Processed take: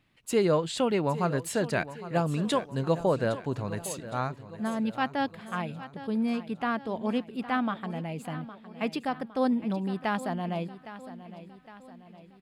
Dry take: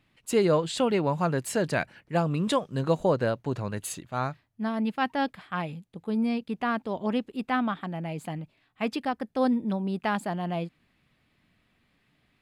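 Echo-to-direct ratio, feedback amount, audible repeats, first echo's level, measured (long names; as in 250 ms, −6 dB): −13.5 dB, 50%, 4, −14.5 dB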